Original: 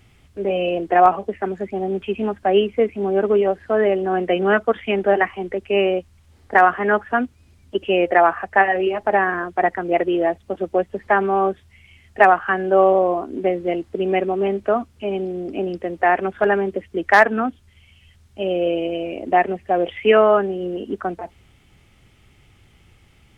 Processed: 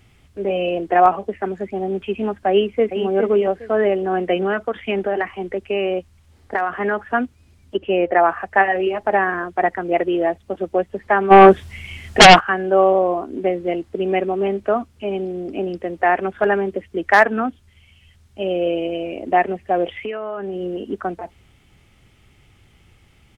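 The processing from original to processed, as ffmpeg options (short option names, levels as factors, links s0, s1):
-filter_complex "[0:a]asplit=2[s0][s1];[s1]afade=t=in:st=2.5:d=0.01,afade=t=out:st=3.06:d=0.01,aecho=0:1:410|820|1230:0.421697|0.105424|0.026356[s2];[s0][s2]amix=inputs=2:normalize=0,asettb=1/sr,asplit=3[s3][s4][s5];[s3]atrim=end=4.424[s6];[s4]atrim=start=4.42:end=7.08,asetpts=PTS-STARTPTS,afade=t=in:d=0.004:c=qsin,afade=t=out:st=2.656:d=0.004:c=qsin,acompressor=threshold=0.158:ratio=6:attack=3.2:release=140:knee=1:detection=peak[s7];[s5]atrim=start=7.076[s8];[s6][s7]acrossfade=d=0.004:c1=hsin:c2=qsin[s9];[s9][s8]acrossfade=d=0.004:c1=qsin:c2=hsin,asettb=1/sr,asplit=3[s10][s11][s12];[s10]atrim=end=7.774[s13];[s11]atrim=start=7.77:end=8.29,asetpts=PTS-STARTPTS,afade=t=in:d=0.004:c=qsin,afade=t=out:st=0.516:d=0.004:c=qsin,lowpass=f=2000:p=1[s14];[s12]atrim=start=8.286[s15];[s13][s14]acrossfade=d=0.004:c1=hsin:c2=qsin[s16];[s16][s15]acrossfade=d=0.004:c1=qsin:c2=hsin,asplit=3[s17][s18][s19];[s17]afade=t=out:st=11.3:d=0.02[s20];[s18]aeval=exprs='0.841*sin(PI/2*3.55*val(0)/0.841)':c=same,afade=t=in:st=11.3:d=0.02,afade=t=out:st=12.39:d=0.02[s21];[s19]afade=t=in:st=12.39:d=0.02[s22];[s20][s21][s22]amix=inputs=3:normalize=0,asettb=1/sr,asplit=3[s23][s24][s25];[s23]atrim=end=19.934[s26];[s24]atrim=start=19.93:end=20.56,asetpts=PTS-STARTPTS,afade=t=in:d=0.004:c=qsin,afade=t=out:st=0.626:d=0.004:c=qsin,acompressor=threshold=0.0708:ratio=20:attack=3.2:release=140:knee=1:detection=peak[s27];[s25]atrim=start=20.556[s28];[s26][s27]acrossfade=d=0.004:c1=hsin:c2=qsin[s29];[s29][s28]acrossfade=d=0.004:c1=qsin:c2=hsin"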